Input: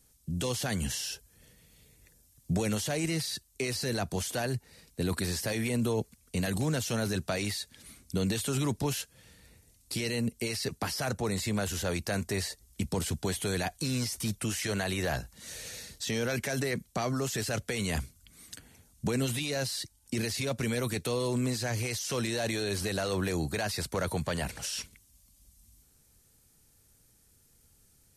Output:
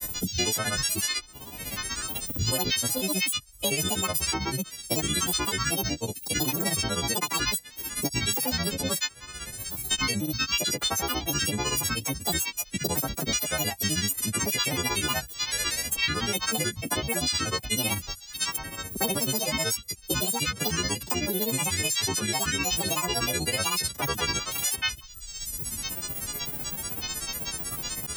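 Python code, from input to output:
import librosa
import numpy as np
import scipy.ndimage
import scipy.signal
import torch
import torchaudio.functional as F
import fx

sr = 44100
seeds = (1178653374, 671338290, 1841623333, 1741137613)

y = fx.freq_snap(x, sr, grid_st=3)
y = fx.granulator(y, sr, seeds[0], grain_ms=100.0, per_s=16.0, spray_ms=100.0, spread_st=12)
y = fx.band_squash(y, sr, depth_pct=100)
y = y * 10.0 ** (2.0 / 20.0)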